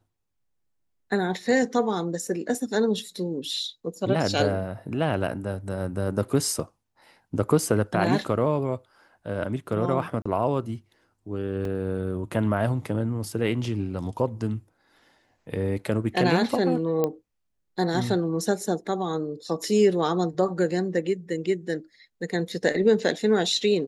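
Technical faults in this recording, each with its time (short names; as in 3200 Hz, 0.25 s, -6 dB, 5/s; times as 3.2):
10.22–10.26 gap 35 ms
11.65 gap 2.2 ms
17.04 pop -12 dBFS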